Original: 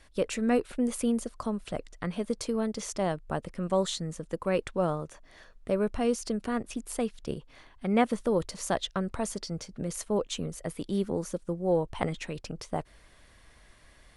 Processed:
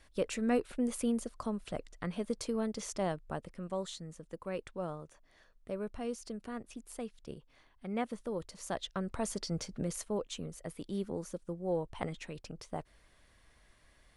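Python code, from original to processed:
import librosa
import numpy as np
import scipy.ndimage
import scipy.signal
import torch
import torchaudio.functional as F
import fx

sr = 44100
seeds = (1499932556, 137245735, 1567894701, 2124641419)

y = fx.gain(x, sr, db=fx.line((3.05, -4.5), (3.81, -11.0), (8.48, -11.0), (9.68, 1.0), (10.18, -7.5)))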